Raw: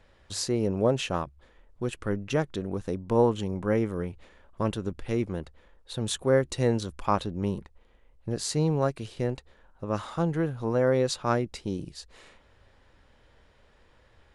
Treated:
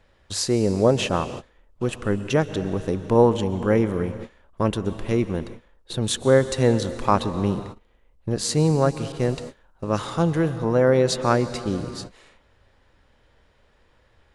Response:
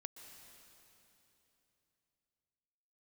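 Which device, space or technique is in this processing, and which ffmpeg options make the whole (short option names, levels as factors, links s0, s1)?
keyed gated reverb: -filter_complex "[0:a]asplit=3[s0][s1][s2];[1:a]atrim=start_sample=2205[s3];[s1][s3]afir=irnorm=-1:irlink=0[s4];[s2]apad=whole_len=632545[s5];[s4][s5]sidechaingate=range=0.00631:threshold=0.00447:ratio=16:detection=peak,volume=1.88[s6];[s0][s6]amix=inputs=2:normalize=0,asettb=1/sr,asplit=3[s7][s8][s9];[s7]atrim=end=9.124[s10];[s8]atrim=start=9.12:end=10.58,asetpts=PTS-STARTPTS,afade=t=in:d=0.004:c=qsin,afade=t=out:st=1.456:d=0.004:c=qsin,adynamicequalizer=threshold=0.00708:dfrequency=2800:dqfactor=0.7:tfrequency=2800:tqfactor=0.7:attack=5:release=100:ratio=0.375:range=2.5:mode=boostabove:tftype=highshelf[s11];[s9]atrim=start=10.576[s12];[s10][s11]acrossfade=d=0.004:c1=hsin:c2=qsin[s13];[s13][s12]acrossfade=d=0.004:c1=qsin:c2=hsin"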